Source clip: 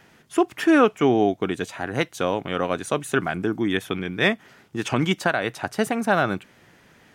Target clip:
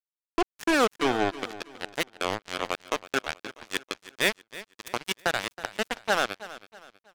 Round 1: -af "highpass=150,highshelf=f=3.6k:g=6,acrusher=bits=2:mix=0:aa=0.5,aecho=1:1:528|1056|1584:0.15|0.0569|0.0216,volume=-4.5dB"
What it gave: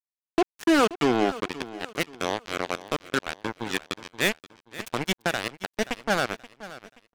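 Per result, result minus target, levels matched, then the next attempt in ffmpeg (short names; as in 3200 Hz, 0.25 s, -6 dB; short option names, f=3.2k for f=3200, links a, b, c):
echo 0.206 s late; 125 Hz band +5.0 dB
-af "highpass=150,highshelf=f=3.6k:g=6,acrusher=bits=2:mix=0:aa=0.5,aecho=1:1:322|644|966:0.15|0.0569|0.0216,volume=-4.5dB"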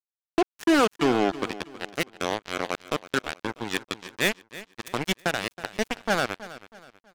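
125 Hz band +5.0 dB
-af "highpass=330,highshelf=f=3.6k:g=6,acrusher=bits=2:mix=0:aa=0.5,aecho=1:1:322|644|966:0.15|0.0569|0.0216,volume=-4.5dB"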